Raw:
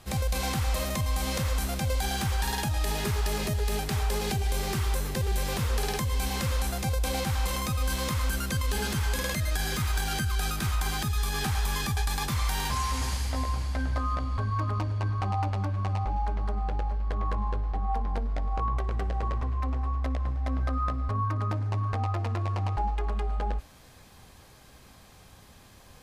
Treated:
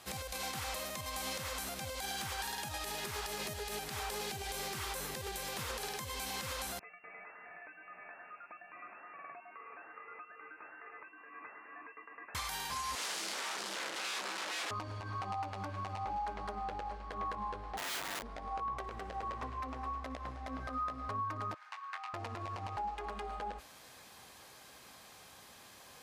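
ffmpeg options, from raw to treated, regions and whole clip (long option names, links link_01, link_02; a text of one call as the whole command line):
ffmpeg -i in.wav -filter_complex "[0:a]asettb=1/sr,asplit=3[link_01][link_02][link_03];[link_01]atrim=end=6.794[link_04];[link_02]atrim=start=6.79:end=12.35,asetpts=PTS-STARTPTS,afade=type=in:duration=0.004:curve=qsin,afade=type=out:start_time=5.556:duration=0.004:curve=qsin,aderivative,lowpass=frequency=2400:width_type=q:width=0.5098,lowpass=frequency=2400:width_type=q:width=0.6013,lowpass=frequency=2400:width_type=q:width=0.9,lowpass=frequency=2400:width_type=q:width=2.563,afreqshift=-2800[link_05];[link_03]atrim=start=12.346[link_06];[link_04][link_05]acrossfade=duration=0.004:curve1=hsin:curve2=qsin[link_07];[link_07][link_06]acrossfade=duration=0.004:curve1=qsin:curve2=hsin,asettb=1/sr,asplit=3[link_08][link_09][link_10];[link_08]atrim=end=12.954[link_11];[link_09]atrim=start=12.95:end=14.71,asetpts=PTS-STARTPTS,afade=type=in:duration=0.004:curve=qsin,afade=type=out:start_time=1.756:duration=0.004:curve=qsin,aeval=exprs='(mod(29.9*val(0)+1,2)-1)/29.9':channel_layout=same,highpass=270,lowpass=7800,asplit=2[link_12][link_13];[link_13]adelay=40,volume=-11dB[link_14];[link_12][link_14]amix=inputs=2:normalize=0,atrim=end_sample=77616[link_15];[link_10]atrim=start=14.706[link_16];[link_11][link_15]acrossfade=duration=0.004:curve1=hsin:curve2=qsin[link_17];[link_17][link_16]acrossfade=duration=0.004:curve1=qsin:curve2=hsin,asettb=1/sr,asplit=3[link_18][link_19][link_20];[link_18]atrim=end=17.774[link_21];[link_19]atrim=start=17.77:end=18.23,asetpts=PTS-STARTPTS,afade=type=in:duration=0.004:curve=qsin,afade=type=out:start_time=0.456:duration=0.004:curve=qsin,lowshelf=frequency=270:gain=-9,aeval=exprs='(mod(39.8*val(0)+1,2)-1)/39.8':channel_layout=same[link_22];[link_20]atrim=start=18.226[link_23];[link_21][link_22]acrossfade=duration=0.004:curve1=hsin:curve2=qsin[link_24];[link_24][link_23]acrossfade=duration=0.004:curve1=qsin:curve2=hsin,asettb=1/sr,asplit=3[link_25][link_26][link_27];[link_25]atrim=end=21.544[link_28];[link_26]atrim=start=21.54:end=22.14,asetpts=PTS-STARTPTS,afade=type=in:duration=0.004:curve=qsin,afade=type=out:start_time=0.596:duration=0.004:curve=qsin,highpass=frequency=1200:width=0.5412,highpass=frequency=1200:width=1.3066,equalizer=frequency=12000:width_type=o:width=2.4:gain=-11,asplit=2[link_29][link_30];[link_30]adelay=22,volume=-6.5dB[link_31];[link_29][link_31]amix=inputs=2:normalize=0,atrim=end_sample=26460[link_32];[link_27]atrim=start=22.136[link_33];[link_28][link_32]acrossfade=duration=0.004:curve1=hsin:curve2=qsin[link_34];[link_34][link_33]acrossfade=duration=0.004:curve1=qsin:curve2=hsin,highpass=frequency=570:poles=1,acompressor=threshold=-35dB:ratio=6,alimiter=level_in=6dB:limit=-24dB:level=0:latency=1:release=80,volume=-6dB,volume=1dB" out.wav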